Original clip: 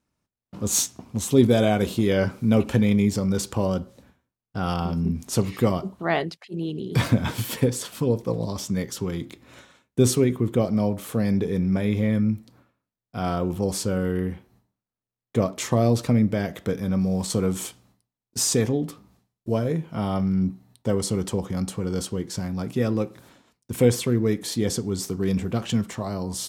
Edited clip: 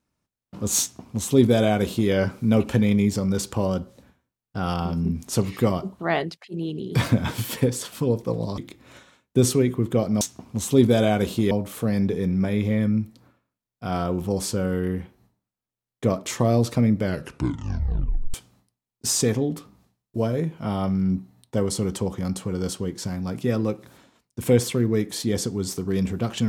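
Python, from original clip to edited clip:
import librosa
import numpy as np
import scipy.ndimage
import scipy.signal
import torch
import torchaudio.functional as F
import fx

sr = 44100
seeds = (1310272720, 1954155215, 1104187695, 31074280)

y = fx.edit(x, sr, fx.duplicate(start_s=0.81, length_s=1.3, to_s=10.83),
    fx.cut(start_s=8.58, length_s=0.62),
    fx.tape_stop(start_s=16.32, length_s=1.34), tone=tone)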